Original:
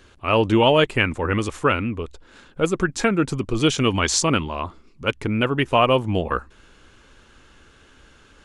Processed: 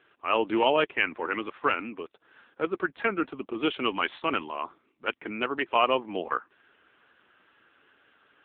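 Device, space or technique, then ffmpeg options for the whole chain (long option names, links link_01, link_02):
telephone: -af "highpass=220,highpass=320,lowpass=3100,equalizer=frequency=540:width=1.7:gain=-4.5,volume=-2.5dB" -ar 8000 -c:a libopencore_amrnb -b:a 6700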